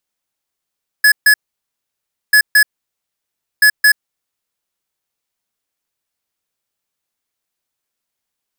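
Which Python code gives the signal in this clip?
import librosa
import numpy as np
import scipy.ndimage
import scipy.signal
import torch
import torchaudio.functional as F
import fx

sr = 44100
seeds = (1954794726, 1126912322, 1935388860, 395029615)

y = fx.beep_pattern(sr, wave='square', hz=1700.0, on_s=0.08, off_s=0.14, beeps=2, pause_s=0.99, groups=3, level_db=-8.0)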